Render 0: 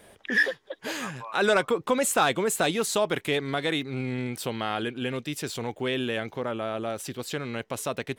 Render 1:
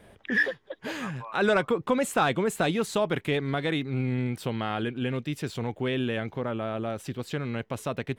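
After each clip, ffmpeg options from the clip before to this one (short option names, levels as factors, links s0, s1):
-af "bass=f=250:g=7,treble=f=4000:g=-8,volume=0.841"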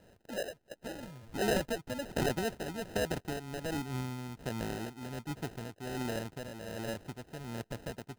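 -af "acrusher=samples=39:mix=1:aa=0.000001,tremolo=f=1.3:d=0.58,volume=0.473"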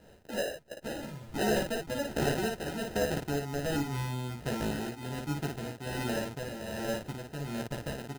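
-filter_complex "[0:a]aecho=1:1:14|56:0.668|0.668,asplit=2[s0][s1];[s1]alimiter=level_in=1.06:limit=0.0631:level=0:latency=1:release=403,volume=0.944,volume=1.41[s2];[s0][s2]amix=inputs=2:normalize=0,volume=0.531"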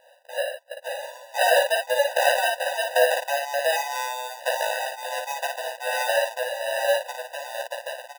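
-af "dynaudnorm=f=310:g=7:m=2.51,afftfilt=real='re*eq(mod(floor(b*sr/1024/500),2),1)':imag='im*eq(mod(floor(b*sr/1024/500),2),1)':win_size=1024:overlap=0.75,volume=2.11"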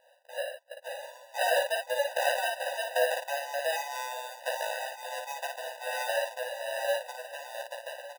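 -af "aecho=1:1:1153:0.141,volume=0.422"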